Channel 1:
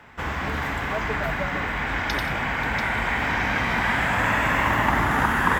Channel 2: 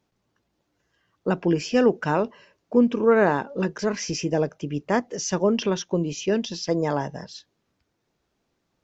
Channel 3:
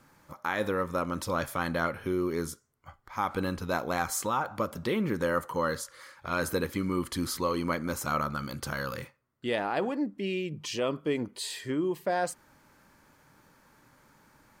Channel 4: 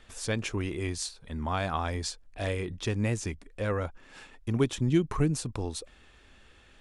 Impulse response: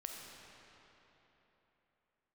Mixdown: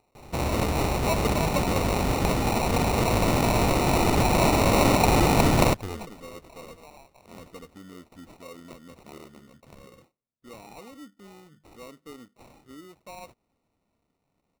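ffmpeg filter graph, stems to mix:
-filter_complex "[0:a]adelay=150,volume=2dB[link_01];[1:a]acompressor=mode=upward:threshold=-30dB:ratio=2.5,highpass=frequency=600:width=0.5412,highpass=frequency=600:width=1.3066,acompressor=threshold=-32dB:ratio=6,volume=-15dB[link_02];[2:a]aecho=1:1:4.1:0.34,adelay=1000,volume=-16dB[link_03];[3:a]aeval=exprs='clip(val(0),-1,0.015)':channel_layout=same,adelay=250,volume=-0.5dB[link_04];[link_01][link_02][link_03][link_04]amix=inputs=4:normalize=0,acrusher=samples=27:mix=1:aa=0.000001,asoftclip=type=tanh:threshold=-7.5dB"

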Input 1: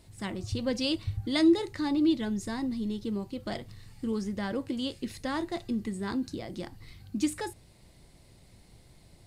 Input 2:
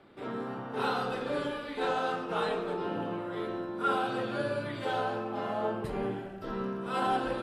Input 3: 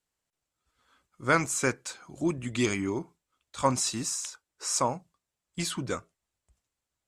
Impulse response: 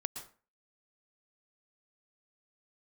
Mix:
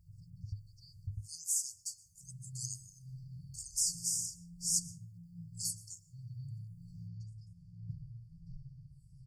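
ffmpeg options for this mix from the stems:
-filter_complex "[0:a]lowpass=1900,acompressor=threshold=-37dB:ratio=2,volume=-2dB,asplit=2[link_01][link_02];[link_02]volume=-21.5dB[link_03];[1:a]bass=frequency=250:gain=12,treble=frequency=4000:gain=-15,acompressor=threshold=-30dB:ratio=6,asplit=2[link_04][link_05];[link_05]afreqshift=-1.3[link_06];[link_04][link_06]amix=inputs=2:normalize=1,adelay=2050,volume=-3.5dB[link_07];[2:a]highpass=frequency=380:width=0.5412,highpass=frequency=380:width=1.3066,aemphasis=mode=production:type=50fm,volume=-11.5dB,asplit=3[link_08][link_09][link_10];[link_09]volume=-11.5dB[link_11];[link_10]apad=whole_len=408651[link_12];[link_01][link_12]sidechaincompress=threshold=-60dB:ratio=8:attack=16:release=854[link_13];[3:a]atrim=start_sample=2205[link_14];[link_03][link_11]amix=inputs=2:normalize=0[link_15];[link_15][link_14]afir=irnorm=-1:irlink=0[link_16];[link_13][link_07][link_08][link_16]amix=inputs=4:normalize=0,afftfilt=real='re*(1-between(b*sr/4096,180,4400))':imag='im*(1-between(b*sr/4096,180,4400))':win_size=4096:overlap=0.75,lowshelf=frequency=61:gain=-6"

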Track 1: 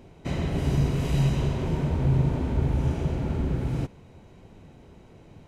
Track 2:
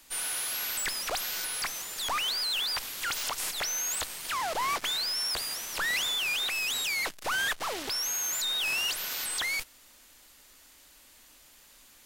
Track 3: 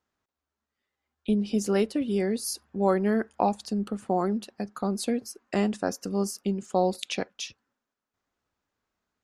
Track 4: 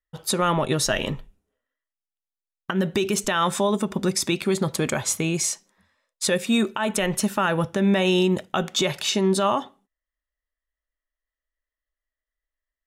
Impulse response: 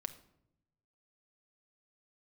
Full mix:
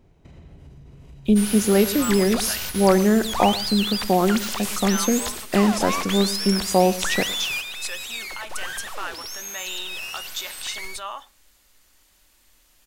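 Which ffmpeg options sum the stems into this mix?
-filter_complex "[0:a]alimiter=limit=-23.5dB:level=0:latency=1:release=102,acompressor=threshold=-37dB:ratio=4,volume=-10.5dB[link_01];[1:a]adelay=1250,volume=-1dB,asplit=3[link_02][link_03][link_04];[link_03]volume=-4dB[link_05];[link_04]volume=-6.5dB[link_06];[2:a]volume=2dB,asplit=4[link_07][link_08][link_09][link_10];[link_08]volume=-3.5dB[link_11];[link_09]volume=-13dB[link_12];[3:a]highpass=1100,adelay=1600,volume=-6.5dB[link_13];[link_10]apad=whole_len=586944[link_14];[link_02][link_14]sidechaingate=range=-33dB:threshold=-50dB:ratio=16:detection=peak[link_15];[4:a]atrim=start_sample=2205[link_16];[link_05][link_11]amix=inputs=2:normalize=0[link_17];[link_17][link_16]afir=irnorm=-1:irlink=0[link_18];[link_06][link_12]amix=inputs=2:normalize=0,aecho=0:1:112:1[link_19];[link_01][link_15][link_07][link_13][link_18][link_19]amix=inputs=6:normalize=0,lowshelf=frequency=85:gain=10.5"

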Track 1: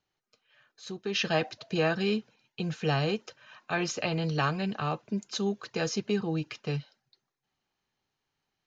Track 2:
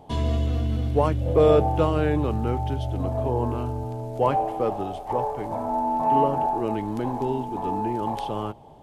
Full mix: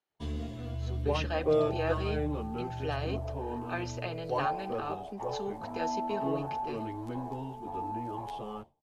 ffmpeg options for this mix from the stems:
ffmpeg -i stem1.wav -i stem2.wav -filter_complex "[0:a]highpass=310,highshelf=frequency=3100:gain=-8.5,volume=-4.5dB[link_01];[1:a]agate=range=-33dB:threshold=-31dB:ratio=3:detection=peak,asplit=2[link_02][link_03];[link_03]adelay=11.4,afreqshift=0.95[link_04];[link_02][link_04]amix=inputs=2:normalize=1,adelay=100,volume=-7.5dB[link_05];[link_01][link_05]amix=inputs=2:normalize=0" out.wav

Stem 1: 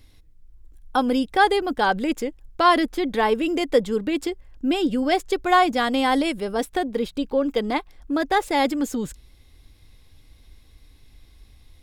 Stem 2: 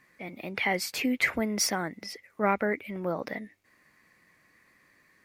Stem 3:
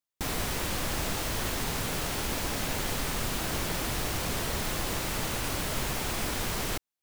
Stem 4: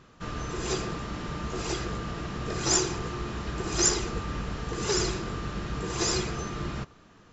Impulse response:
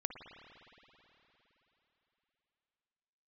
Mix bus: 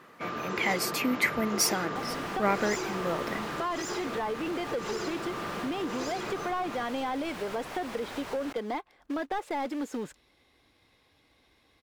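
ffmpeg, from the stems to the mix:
-filter_complex "[0:a]highpass=frequency=150:poles=1,acrusher=bits=4:mode=log:mix=0:aa=0.000001,adelay=1000,volume=-12dB[link_01];[1:a]highshelf=frequency=8600:gain=7.5,volume=-1dB,asplit=2[link_02][link_03];[2:a]adelay=1750,volume=-14.5dB[link_04];[3:a]highpass=130,volume=-7.5dB[link_05];[link_03]apad=whole_len=565439[link_06];[link_01][link_06]sidechaincompress=threshold=-54dB:ratio=8:attack=16:release=197[link_07];[link_07][link_04][link_05]amix=inputs=3:normalize=0,asplit=2[link_08][link_09];[link_09]highpass=frequency=720:poles=1,volume=22dB,asoftclip=type=tanh:threshold=-16dB[link_10];[link_08][link_10]amix=inputs=2:normalize=0,lowpass=frequency=1200:poles=1,volume=-6dB,acompressor=threshold=-30dB:ratio=4,volume=0dB[link_11];[link_02][link_11]amix=inputs=2:normalize=0"

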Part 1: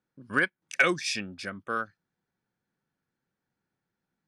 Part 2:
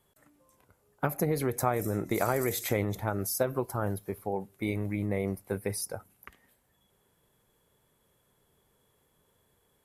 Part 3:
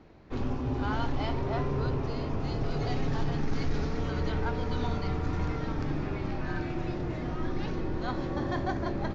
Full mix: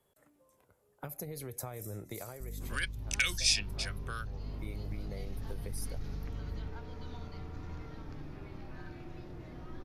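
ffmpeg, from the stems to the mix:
ffmpeg -i stem1.wav -i stem2.wav -i stem3.wav -filter_complex "[0:a]tiltshelf=frequency=970:gain=-5,aeval=exprs='val(0)+0.01*(sin(2*PI*50*n/s)+sin(2*PI*2*50*n/s)/2+sin(2*PI*3*50*n/s)/3+sin(2*PI*4*50*n/s)/4+sin(2*PI*5*50*n/s)/5)':channel_layout=same,adelay=2400,volume=1.5dB[link_01];[1:a]equalizer=frequency=520:width=1.5:gain=5.5,volume=2.5dB,afade=type=out:start_time=2.14:duration=0.28:silence=0.266073,afade=type=in:start_time=4.31:duration=0.43:silence=0.398107[link_02];[2:a]adelay=2300,volume=-11.5dB[link_03];[link_01][link_02][link_03]amix=inputs=3:normalize=0,acrossover=split=120|3000[link_04][link_05][link_06];[link_05]acompressor=threshold=-47dB:ratio=3[link_07];[link_04][link_07][link_06]amix=inputs=3:normalize=0" out.wav

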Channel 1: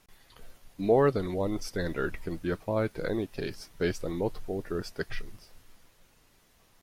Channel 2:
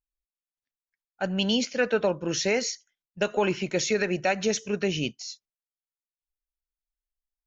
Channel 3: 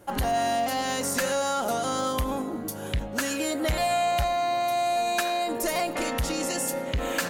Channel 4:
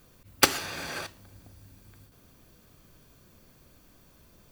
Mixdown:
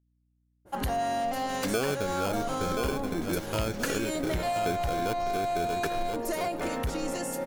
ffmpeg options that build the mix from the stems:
ffmpeg -i stem1.wav -i stem2.wav -i stem3.wav -i stem4.wav -filter_complex "[0:a]acrusher=samples=23:mix=1:aa=0.000001,adelay=850,volume=0.5dB,asplit=2[link_01][link_02];[link_02]volume=-8.5dB[link_03];[1:a]aeval=exprs='val(0)+0.00158*(sin(2*PI*60*n/s)+sin(2*PI*2*60*n/s)/2+sin(2*PI*3*60*n/s)/3+sin(2*PI*4*60*n/s)/4+sin(2*PI*5*60*n/s)/5)':channel_layout=same,aeval=exprs='0.0316*(abs(mod(val(0)/0.0316+3,4)-2)-1)':channel_layout=same,volume=-14dB,asplit=2[link_04][link_05];[link_05]volume=-3.5dB[link_06];[2:a]adynamicequalizer=threshold=0.00891:dfrequency=1800:dqfactor=0.7:tfrequency=1800:tqfactor=0.7:attack=5:release=100:ratio=0.375:range=3.5:mode=cutabove:tftype=highshelf,adelay=650,volume=-2dB[link_07];[3:a]asoftclip=type=tanh:threshold=-17dB,adelay=1200,volume=-10.5dB[link_08];[link_03][link_06]amix=inputs=2:normalize=0,aecho=0:1:1029|2058|3087|4116:1|0.26|0.0676|0.0176[link_09];[link_01][link_04][link_07][link_08][link_09]amix=inputs=5:normalize=0,acompressor=threshold=-25dB:ratio=6" out.wav

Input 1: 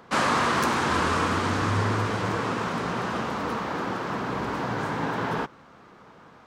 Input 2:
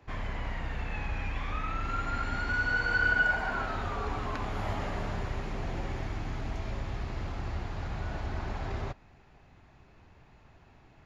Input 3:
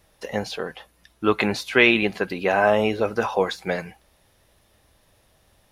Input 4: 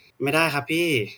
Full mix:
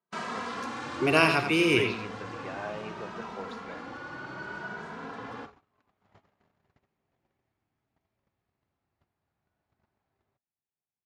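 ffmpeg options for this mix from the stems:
ffmpeg -i stem1.wav -i stem2.wav -i stem3.wav -i stem4.wav -filter_complex "[0:a]asplit=2[link_01][link_02];[link_02]adelay=2.7,afreqshift=0.65[link_03];[link_01][link_03]amix=inputs=2:normalize=1,volume=-9.5dB[link_04];[1:a]adelay=1450,volume=-15.5dB[link_05];[2:a]volume=-19.5dB[link_06];[3:a]adelay=800,volume=-1.5dB,asplit=2[link_07][link_08];[link_08]volume=-7.5dB,aecho=0:1:87:1[link_09];[link_04][link_05][link_06][link_07][link_09]amix=inputs=5:normalize=0,agate=range=-27dB:threshold=-44dB:ratio=16:detection=peak,highpass=120,lowpass=7800" out.wav

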